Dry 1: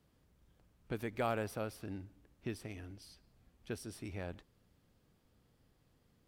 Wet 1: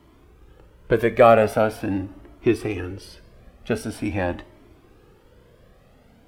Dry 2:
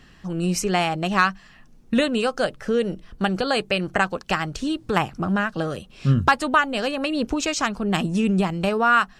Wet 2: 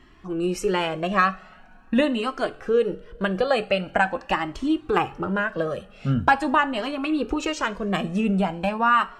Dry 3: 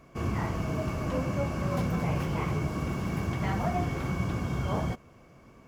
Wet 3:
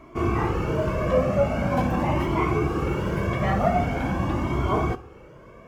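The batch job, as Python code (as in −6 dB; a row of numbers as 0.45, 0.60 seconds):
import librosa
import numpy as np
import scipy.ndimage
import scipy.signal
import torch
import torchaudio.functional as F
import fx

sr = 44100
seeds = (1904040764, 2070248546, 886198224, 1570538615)

y = fx.curve_eq(x, sr, hz=(160.0, 350.0, 2900.0, 4600.0), db=(0, 8, 2, -4))
y = fx.rev_double_slope(y, sr, seeds[0], early_s=0.37, late_s=2.7, knee_db=-21, drr_db=12.0)
y = fx.comb_cascade(y, sr, direction='rising', hz=0.44)
y = y * 10.0 ** (-24 / 20.0) / np.sqrt(np.mean(np.square(y)))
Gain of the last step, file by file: +19.5, −1.0, +7.5 decibels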